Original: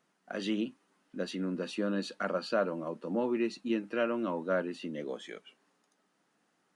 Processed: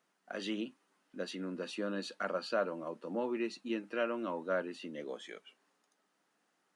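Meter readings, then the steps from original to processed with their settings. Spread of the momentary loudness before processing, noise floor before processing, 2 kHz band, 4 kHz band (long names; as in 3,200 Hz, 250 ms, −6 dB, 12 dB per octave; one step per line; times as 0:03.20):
9 LU, −76 dBFS, −2.0 dB, −2.0 dB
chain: low-shelf EQ 200 Hz −11 dB
level −2 dB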